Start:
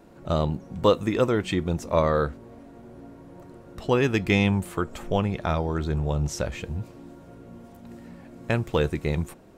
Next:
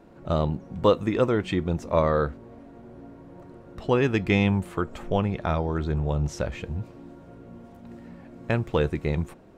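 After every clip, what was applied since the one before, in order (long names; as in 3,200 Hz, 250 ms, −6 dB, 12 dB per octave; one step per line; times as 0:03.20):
high-shelf EQ 5,600 Hz −11.5 dB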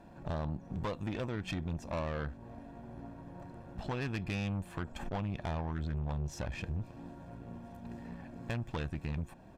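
comb filter 1.2 ms, depth 57%
downward compressor 2.5 to 1, threshold −32 dBFS, peak gain reduction 11.5 dB
tube saturation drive 32 dB, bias 0.7
level +1 dB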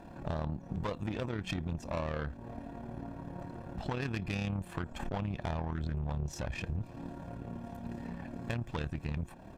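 in parallel at +2.5 dB: downward compressor, threshold −43 dBFS, peak gain reduction 11 dB
on the sum: amplitude modulation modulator 36 Hz, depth 35%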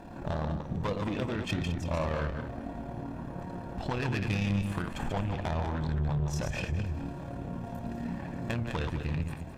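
feedback delay that plays each chunk backwards 105 ms, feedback 49%, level −5 dB
in parallel at −4 dB: hard clipping −31.5 dBFS, distortion −10 dB
on the sum: flanger 1.2 Hz, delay 6.2 ms, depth 9.7 ms, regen +85%
level +4 dB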